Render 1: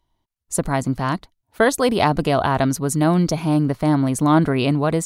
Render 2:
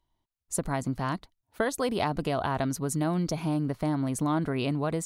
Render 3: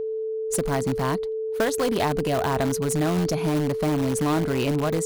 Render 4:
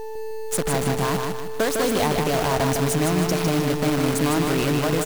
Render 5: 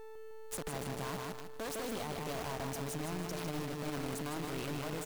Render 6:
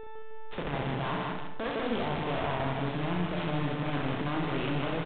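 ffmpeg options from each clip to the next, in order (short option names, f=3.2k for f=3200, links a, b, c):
-af "acompressor=threshold=-19dB:ratio=2.5,volume=-6.5dB"
-filter_complex "[0:a]aeval=exprs='val(0)+0.0282*sin(2*PI*440*n/s)':c=same,asplit=2[a][b];[b]aeval=exprs='(mod(13.3*val(0)+1,2)-1)/13.3':c=same,volume=-9.5dB[c];[a][c]amix=inputs=2:normalize=0,volume=3dB"
-af "acrusher=bits=5:dc=4:mix=0:aa=0.000001,aecho=1:1:155|310|465|620|775:0.596|0.244|0.1|0.0411|0.0168"
-af "alimiter=limit=-19.5dB:level=0:latency=1:release=52,aeval=exprs='(tanh(20*val(0)+0.7)-tanh(0.7))/20':c=same,volume=-7.5dB"
-filter_complex "[0:a]asplit=2[a][b];[b]aecho=0:1:35|67:0.531|0.596[c];[a][c]amix=inputs=2:normalize=0,aresample=8000,aresample=44100,volume=6.5dB"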